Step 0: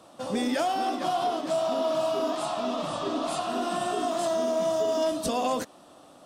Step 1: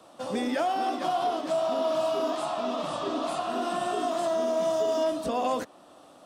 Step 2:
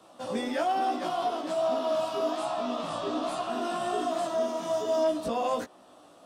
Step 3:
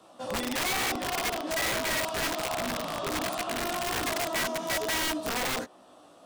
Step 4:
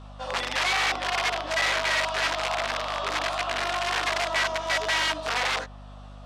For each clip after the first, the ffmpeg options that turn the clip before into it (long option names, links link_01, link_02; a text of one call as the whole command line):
ffmpeg -i in.wav -filter_complex "[0:a]acrossover=split=120|750|2700[link_01][link_02][link_03][link_04];[link_04]alimiter=level_in=9dB:limit=-24dB:level=0:latency=1:release=419,volume=-9dB[link_05];[link_01][link_02][link_03][link_05]amix=inputs=4:normalize=0,bass=frequency=250:gain=-4,treble=frequency=4000:gain=-2" out.wav
ffmpeg -i in.wav -af "flanger=delay=15.5:depth=2.3:speed=1.2,volume=1.5dB" out.wav
ffmpeg -i in.wav -af "aeval=exprs='(mod(16.8*val(0)+1,2)-1)/16.8':channel_layout=same" out.wav
ffmpeg -i in.wav -af "highpass=730,lowpass=4700,aeval=exprs='val(0)+0.00355*(sin(2*PI*50*n/s)+sin(2*PI*2*50*n/s)/2+sin(2*PI*3*50*n/s)/3+sin(2*PI*4*50*n/s)/4+sin(2*PI*5*50*n/s)/5)':channel_layout=same,volume=6.5dB" out.wav